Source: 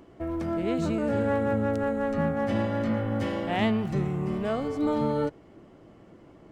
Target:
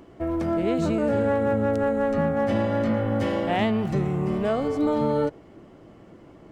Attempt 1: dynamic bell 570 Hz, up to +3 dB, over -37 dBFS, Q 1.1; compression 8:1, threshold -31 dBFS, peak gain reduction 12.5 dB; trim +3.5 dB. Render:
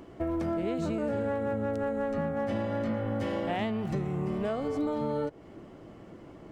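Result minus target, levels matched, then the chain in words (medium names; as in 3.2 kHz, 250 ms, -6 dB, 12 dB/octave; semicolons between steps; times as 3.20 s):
compression: peak gain reduction +8.5 dB
dynamic bell 570 Hz, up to +3 dB, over -37 dBFS, Q 1.1; compression 8:1, threshold -21.5 dBFS, peak gain reduction 4 dB; trim +3.5 dB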